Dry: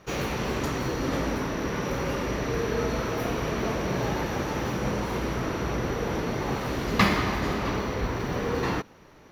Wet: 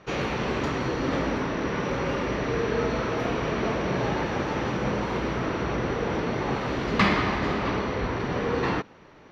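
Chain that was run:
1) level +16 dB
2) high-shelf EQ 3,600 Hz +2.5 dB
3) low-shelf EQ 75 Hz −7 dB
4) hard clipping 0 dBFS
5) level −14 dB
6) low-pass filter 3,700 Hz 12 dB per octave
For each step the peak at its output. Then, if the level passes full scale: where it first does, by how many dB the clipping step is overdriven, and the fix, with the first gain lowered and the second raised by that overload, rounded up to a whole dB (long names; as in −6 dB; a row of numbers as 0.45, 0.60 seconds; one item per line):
+9.0, +9.5, +9.5, 0.0, −14.0, −13.0 dBFS
step 1, 9.5 dB
step 1 +6 dB, step 5 −4 dB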